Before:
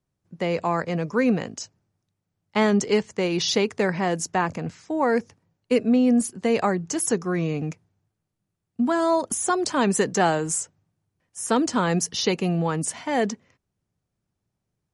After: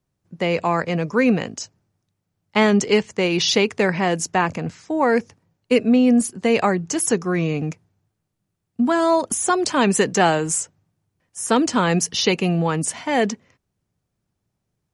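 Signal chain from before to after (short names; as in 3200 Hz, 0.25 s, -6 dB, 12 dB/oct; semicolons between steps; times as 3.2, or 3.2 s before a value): dynamic EQ 2600 Hz, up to +5 dB, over -42 dBFS, Q 1.9; gain +3.5 dB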